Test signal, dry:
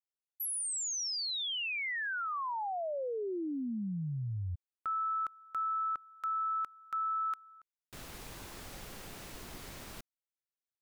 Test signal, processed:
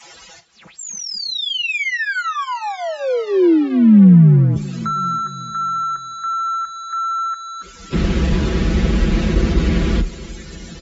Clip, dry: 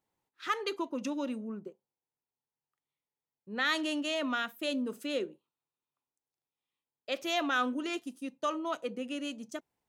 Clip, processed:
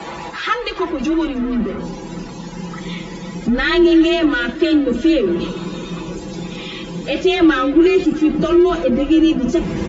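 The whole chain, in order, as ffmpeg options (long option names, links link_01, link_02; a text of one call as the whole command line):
ffmpeg -i in.wav -filter_complex "[0:a]aeval=exprs='val(0)+0.5*0.0188*sgn(val(0))':channel_layout=same,afftdn=noise_reduction=21:noise_floor=-49,acrossover=split=4000[link_01][link_02];[link_02]acompressor=threshold=-53dB:ratio=4:attack=1:release=60[link_03];[link_01][link_03]amix=inputs=2:normalize=0,lowshelf=frequency=180:gain=-10,aecho=1:1:6.3:0.79,asplit=2[link_04][link_05];[link_05]adelay=932.9,volume=-27dB,highshelf=frequency=4000:gain=-21[link_06];[link_04][link_06]amix=inputs=2:normalize=0,asplit=2[link_07][link_08];[link_08]acompressor=threshold=-45dB:ratio=8:attack=7.3:release=224:knee=6:detection=rms,volume=3dB[link_09];[link_07][link_09]amix=inputs=2:normalize=0,asubboost=boost=11.5:cutoff=230,asplit=2[link_10][link_11];[link_11]aecho=0:1:318|636|954|1272|1590:0.126|0.0705|0.0395|0.0221|0.0124[link_12];[link_10][link_12]amix=inputs=2:normalize=0,afreqshift=33,volume=8.5dB" -ar 22050 -c:a aac -b:a 24k out.aac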